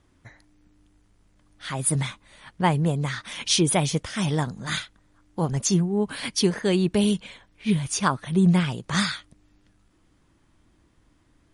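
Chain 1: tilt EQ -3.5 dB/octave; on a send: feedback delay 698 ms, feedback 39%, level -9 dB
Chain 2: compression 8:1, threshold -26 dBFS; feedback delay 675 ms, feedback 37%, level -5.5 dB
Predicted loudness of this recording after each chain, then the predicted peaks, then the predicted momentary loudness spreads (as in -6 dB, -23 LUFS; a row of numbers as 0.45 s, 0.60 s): -17.5 LUFS, -30.5 LUFS; -1.0 dBFS, -15.0 dBFS; 14 LU, 10 LU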